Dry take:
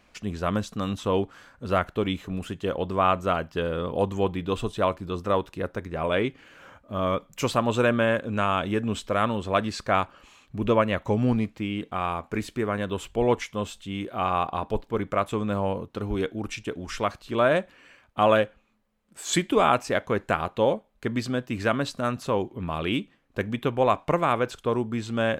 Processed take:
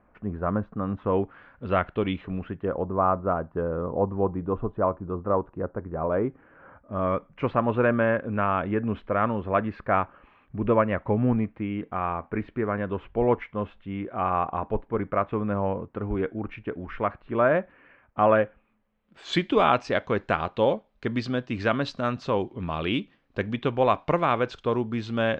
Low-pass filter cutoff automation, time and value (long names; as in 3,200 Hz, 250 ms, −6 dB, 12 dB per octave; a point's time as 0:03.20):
low-pass filter 24 dB per octave
0:00.81 1,500 Hz
0:01.66 3,000 Hz
0:02.18 3,000 Hz
0:02.90 1,300 Hz
0:06.20 1,300 Hz
0:07.14 2,100 Hz
0:18.40 2,100 Hz
0:19.55 5,100 Hz